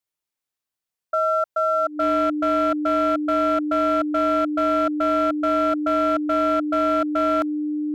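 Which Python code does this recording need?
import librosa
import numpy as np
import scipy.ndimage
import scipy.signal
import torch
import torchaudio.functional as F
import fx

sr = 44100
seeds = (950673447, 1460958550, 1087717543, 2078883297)

y = fx.fix_declip(x, sr, threshold_db=-15.0)
y = fx.notch(y, sr, hz=300.0, q=30.0)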